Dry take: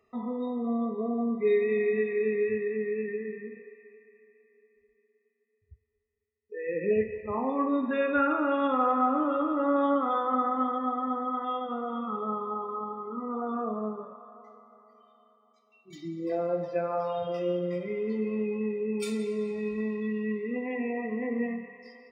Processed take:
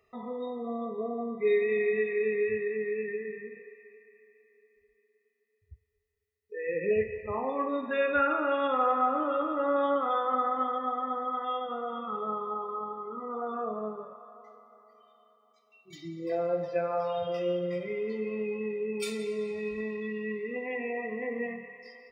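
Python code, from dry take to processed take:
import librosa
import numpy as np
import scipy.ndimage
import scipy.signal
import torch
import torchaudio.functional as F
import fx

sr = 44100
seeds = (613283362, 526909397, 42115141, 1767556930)

y = fx.graphic_eq_10(x, sr, hz=(250, 1000, 8000), db=(-12, -5, -3))
y = F.gain(torch.from_numpy(y), 3.5).numpy()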